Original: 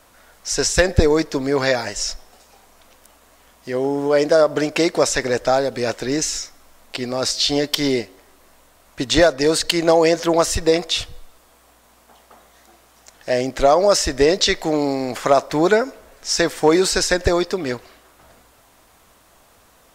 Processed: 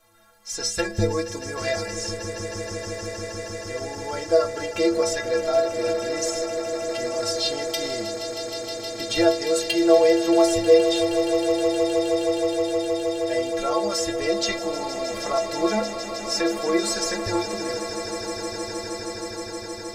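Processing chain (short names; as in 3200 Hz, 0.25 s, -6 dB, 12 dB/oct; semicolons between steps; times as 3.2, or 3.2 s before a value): metallic resonator 100 Hz, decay 0.6 s, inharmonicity 0.03; swelling echo 0.157 s, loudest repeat 8, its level -14 dB; gain +5.5 dB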